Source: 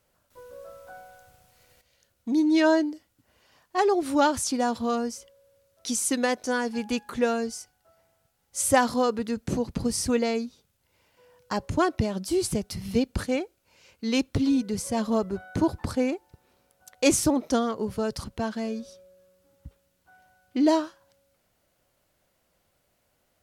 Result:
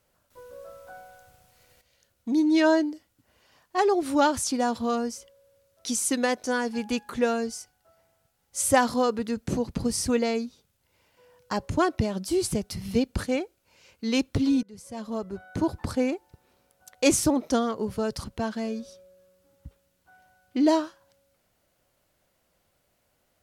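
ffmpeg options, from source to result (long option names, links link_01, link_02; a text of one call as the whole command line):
ffmpeg -i in.wav -filter_complex "[0:a]asplit=2[link_01][link_02];[link_01]atrim=end=14.63,asetpts=PTS-STARTPTS,afade=type=out:start_time=14.626:duration=0.004:curve=hsin:silence=0.0794328[link_03];[link_02]atrim=start=14.63,asetpts=PTS-STARTPTS,afade=type=in:duration=1.32:silence=0.0794328[link_04];[link_03][link_04]concat=n=2:v=0:a=1" out.wav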